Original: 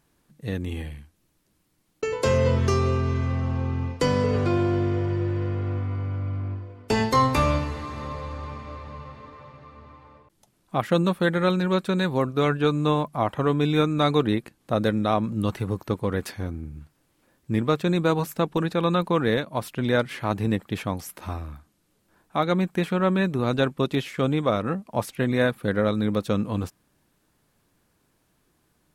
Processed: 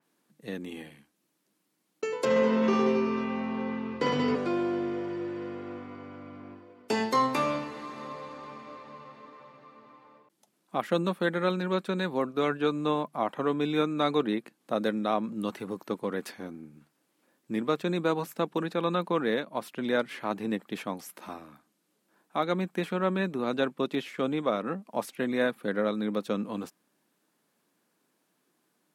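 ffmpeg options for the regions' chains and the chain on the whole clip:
ffmpeg -i in.wav -filter_complex "[0:a]asettb=1/sr,asplit=3[link_01][link_02][link_03];[link_01]atrim=end=2.254[link_04];[link_02]atrim=start=2.25:end=4.35,asetpts=PTS-STARTPTS,afade=type=in:duration=0.004:curve=qsin,afade=type=out:start_time=2.096:duration=0.004:curve=qsin,lowpass=3500,asplit=2[link_05][link_06];[link_06]adelay=13,volume=-6dB[link_07];[link_05][link_07]amix=inputs=2:normalize=0,atrim=end_sample=92610,aecho=1:1:50|110|182|268.4|372.1|496.5:0.794|0.631|0.501|0.398|0.316|0.251,atrim=end_sample=92610[link_08];[link_03]atrim=start=4.346[link_09];[link_04][link_08]acrossfade=duration=0.004:curve1=hsin:curve2=qsin[link_10];[link_10][link_09]acrossfade=duration=0.004:curve1=qsin:curve2=hsin,highpass=frequency=190:width=0.5412,highpass=frequency=190:width=1.3066,adynamicequalizer=threshold=0.00708:dfrequency=4300:dqfactor=0.7:tfrequency=4300:tqfactor=0.7:attack=5:release=100:ratio=0.375:range=2:mode=cutabove:tftype=highshelf,volume=-4.5dB" out.wav

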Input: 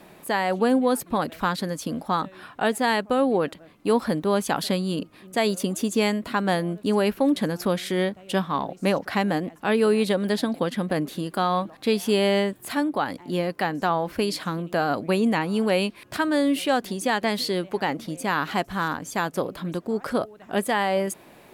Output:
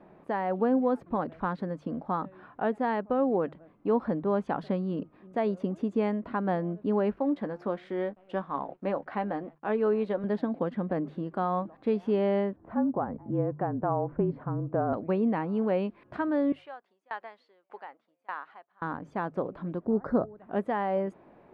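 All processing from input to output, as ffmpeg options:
ffmpeg -i in.wav -filter_complex "[0:a]asettb=1/sr,asplit=3[link_01][link_02][link_03];[link_01]atrim=end=7.164[link_04];[link_02]atrim=start=7.16:end=10.24,asetpts=PTS-STARTPTS,afade=type=in:duration=0.004:curve=qsin,afade=type=out:start_time=3.076:duration=0.004:curve=qsin,highpass=frequency=330:poles=1,aeval=exprs='sgn(val(0))*max(abs(val(0))-0.00224,0)':channel_layout=same,asplit=2[link_05][link_06];[link_06]adelay=14,volume=-11.5dB[link_07];[link_05][link_07]amix=inputs=2:normalize=0,atrim=end_sample=135828[link_08];[link_03]atrim=start=10.236[link_09];[link_04][link_08]acrossfade=duration=0.004:curve1=hsin:curve2=qsin[link_10];[link_10][link_09]acrossfade=duration=0.004:curve1=qsin:curve2=hsin,asettb=1/sr,asplit=3[link_11][link_12][link_13];[link_11]atrim=end=12.564[link_14];[link_12]atrim=start=12.56:end=14.93,asetpts=PTS-STARTPTS,afade=type=in:duration=0.004:curve=qsin,afade=type=out:start_time=2.366:duration=0.004:curve=qsin,lowshelf=frequency=450:gain=3.5,afreqshift=-33,lowpass=1200[link_15];[link_13]atrim=start=14.926[link_16];[link_14][link_15]acrossfade=duration=0.004:curve1=hsin:curve2=qsin[link_17];[link_17][link_16]acrossfade=duration=0.004:curve1=qsin:curve2=hsin,asettb=1/sr,asplit=3[link_18][link_19][link_20];[link_18]atrim=end=16.524[link_21];[link_19]atrim=start=16.52:end=18.82,asetpts=PTS-STARTPTS,afade=type=in:duration=0.004:curve=qsin,afade=type=out:start_time=2.296:duration=0.004:curve=qsin,highpass=860,aeval=exprs='val(0)*pow(10,-28*if(lt(mod(1.7*n/s,1),2*abs(1.7)/1000),1-mod(1.7*n/s,1)/(2*abs(1.7)/1000),(mod(1.7*n/s,1)-2*abs(1.7)/1000)/(1-2*abs(1.7)/1000))/20)':channel_layout=same[link_22];[link_20]atrim=start=18.816[link_23];[link_21][link_22]acrossfade=duration=0.004:curve1=hsin:curve2=qsin[link_24];[link_24][link_23]acrossfade=duration=0.004:curve1=qsin:curve2=hsin,asettb=1/sr,asplit=3[link_25][link_26][link_27];[link_25]atrim=end=19.854[link_28];[link_26]atrim=start=19.85:end=20.37,asetpts=PTS-STARTPTS,afade=type=in:duration=0.004:curve=qsin,afade=type=out:start_time=0.516:duration=0.004:curve=qsin,asuperstop=centerf=2800:order=8:qfactor=1.7,lowshelf=frequency=320:gain=8.5[link_29];[link_27]atrim=start=20.366[link_30];[link_28][link_29]acrossfade=duration=0.004:curve1=hsin:curve2=qsin[link_31];[link_31][link_30]acrossfade=duration=0.004:curve1=qsin:curve2=hsin,lowpass=1200,bandreject=frequency=50:width_type=h:width=6,bandreject=frequency=100:width_type=h:width=6,bandreject=frequency=150:width_type=h:width=6,volume=-4.5dB" out.wav

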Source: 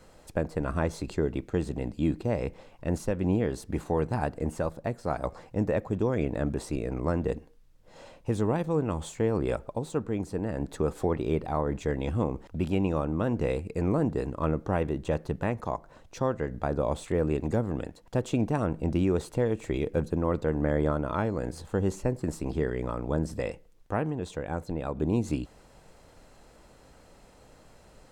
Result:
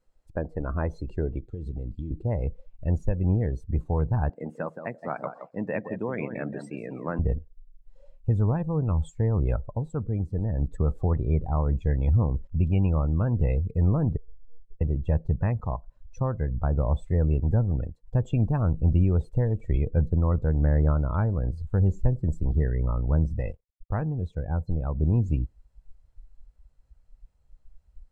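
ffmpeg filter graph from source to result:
ffmpeg -i in.wav -filter_complex "[0:a]asettb=1/sr,asplit=3[link_01][link_02][link_03];[link_01]atrim=end=1.384[link_04];[link_02]atrim=start=1.38:end=2.11,asetpts=PTS-STARTPTS,afade=type=in:duration=0.004:curve=qsin,afade=type=out:start_time=0.726:duration=0.004:curve=qsin,equalizer=frequency=3700:width=1.8:gain=7.5,acompressor=threshold=-31dB:ratio=6:attack=3.2:release=140:knee=1:detection=peak[link_05];[link_03]atrim=start=2.106[link_06];[link_04][link_05]acrossfade=duration=0.004:curve1=hsin:curve2=qsin[link_07];[link_07][link_06]acrossfade=duration=0.004:curve1=qsin:curve2=hsin,asettb=1/sr,asplit=3[link_08][link_09][link_10];[link_08]atrim=end=4.294[link_11];[link_09]atrim=start=4.29:end=7.19,asetpts=PTS-STARTPTS,afade=type=in:duration=0.004:curve=qsin,afade=type=out:start_time=2.896:duration=0.004:curve=qsin,highpass=frequency=190:width=0.5412,highpass=frequency=190:width=1.3066,equalizer=frequency=2100:width=1:gain=7,aecho=1:1:171|342|513:0.398|0.0836|0.0176,atrim=end_sample=127890[link_12];[link_10]atrim=start=7.186[link_13];[link_11][link_12]acrossfade=duration=0.004:curve1=hsin:curve2=qsin[link_14];[link_14][link_13]acrossfade=duration=0.004:curve1=qsin:curve2=hsin,asettb=1/sr,asplit=3[link_15][link_16][link_17];[link_15]atrim=end=14.174[link_18];[link_16]atrim=start=14.17:end=14.81,asetpts=PTS-STARTPTS,afade=type=in:duration=0.004:curve=qsin,afade=type=out:start_time=0.636:duration=0.004:curve=qsin,acompressor=threshold=-34dB:ratio=12:attack=3.2:release=140:knee=1:detection=peak,asuperpass=centerf=220:order=8:qfactor=4.4,aeval=exprs='abs(val(0))':channel_layout=same[link_19];[link_17]atrim=start=14.806[link_20];[link_18][link_19]acrossfade=duration=0.004:curve1=hsin:curve2=qsin[link_21];[link_21][link_20]acrossfade=duration=0.004:curve1=qsin:curve2=hsin,asettb=1/sr,asplit=3[link_22][link_23][link_24];[link_22]atrim=end=23.384[link_25];[link_23]atrim=start=23.38:end=24.02,asetpts=PTS-STARTPTS,afade=type=in:duration=0.004:curve=qsin,afade=type=out:start_time=0.636:duration=0.004:curve=qsin,asubboost=boost=9:cutoff=53,aeval=exprs='sgn(val(0))*max(abs(val(0))-0.00398,0)':channel_layout=same[link_26];[link_24]atrim=start=24.016[link_27];[link_25][link_26]acrossfade=duration=0.004:curve1=hsin:curve2=qsin[link_28];[link_28][link_27]acrossfade=duration=0.004:curve1=qsin:curve2=hsin,afftdn=noise_reduction=23:noise_floor=-37,asubboost=boost=7.5:cutoff=110,volume=-1.5dB" out.wav

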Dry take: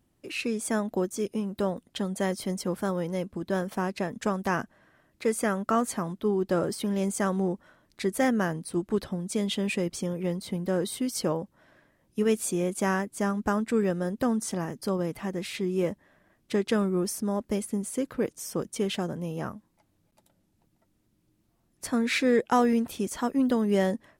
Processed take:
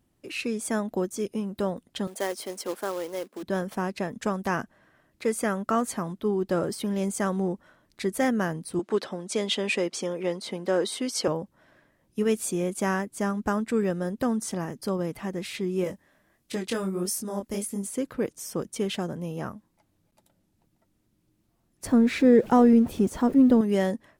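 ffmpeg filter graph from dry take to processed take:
ffmpeg -i in.wav -filter_complex "[0:a]asettb=1/sr,asplit=3[link_01][link_02][link_03];[link_01]atrim=end=2.074[link_04];[link_02]atrim=start=2.07:end=3.43,asetpts=PTS-STARTPTS,afade=type=in:duration=0.004:curve=qsin,afade=type=out:start_time=1.356:duration=0.004:curve=qsin,highpass=frequency=310:width=0.5412,highpass=frequency=310:width=1.3066,acrusher=bits=3:mode=log:mix=0:aa=0.000001[link_05];[link_03]atrim=start=3.426[link_06];[link_04][link_05]acrossfade=duration=0.004:curve1=hsin:curve2=qsin[link_07];[link_07][link_06]acrossfade=duration=0.004:curve1=qsin:curve2=hsin,asettb=1/sr,asplit=3[link_08][link_09][link_10];[link_08]atrim=end=8.794[link_11];[link_09]atrim=start=8.79:end=11.28,asetpts=PTS-STARTPTS,afade=type=in:duration=0.004:curve=qsin,afade=type=out:start_time=2.486:duration=0.004:curve=qsin,highpass=360,lowpass=7500,acontrast=36[link_12];[link_10]atrim=start=11.276[link_13];[link_11][link_12]acrossfade=duration=0.004:curve1=hsin:curve2=qsin[link_14];[link_14][link_13]acrossfade=duration=0.004:curve1=qsin:curve2=hsin,asettb=1/sr,asplit=3[link_15][link_16][link_17];[link_15]atrim=end=15.844[link_18];[link_16]atrim=start=15.84:end=17.87,asetpts=PTS-STARTPTS,afade=type=in:duration=0.004:curve=qsin,afade=type=out:start_time=2.026:duration=0.004:curve=qsin,highshelf=frequency=4200:gain=9.5,flanger=delay=20:depth=6.7:speed=1.5[link_19];[link_17]atrim=start=17.866[link_20];[link_18][link_19]acrossfade=duration=0.004:curve1=hsin:curve2=qsin[link_21];[link_21][link_20]acrossfade=duration=0.004:curve1=qsin:curve2=hsin,asettb=1/sr,asplit=3[link_22][link_23][link_24];[link_22]atrim=end=21.854[link_25];[link_23]atrim=start=21.85:end=23.61,asetpts=PTS-STARTPTS,afade=type=in:duration=0.004:curve=qsin,afade=type=out:start_time=1.756:duration=0.004:curve=qsin,aeval=exprs='val(0)+0.5*0.0112*sgn(val(0))':channel_layout=same,tiltshelf=frequency=880:gain=7.5[link_26];[link_24]atrim=start=23.606[link_27];[link_25][link_26]acrossfade=duration=0.004:curve1=hsin:curve2=qsin[link_28];[link_28][link_27]acrossfade=duration=0.004:curve1=qsin:curve2=hsin" out.wav

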